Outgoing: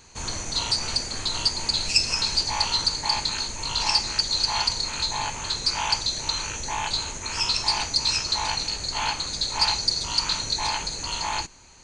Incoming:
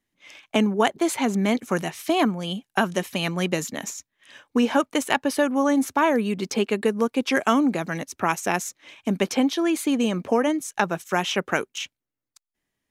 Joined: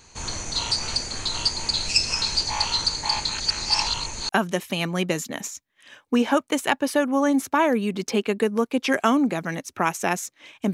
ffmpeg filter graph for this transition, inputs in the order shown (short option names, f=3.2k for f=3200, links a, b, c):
-filter_complex "[0:a]apad=whole_dur=10.73,atrim=end=10.73,asplit=2[a][b];[a]atrim=end=3.402[c];[b]atrim=start=3.398:end=4.292,asetpts=PTS-STARTPTS,areverse[d];[1:a]atrim=start=2.718:end=9.16[e];[c][d]acrossfade=d=0.004:c1=hsin:c2=hsin[f];[f][e]acrossfade=d=0.004:c1=hsin:c2=hsin"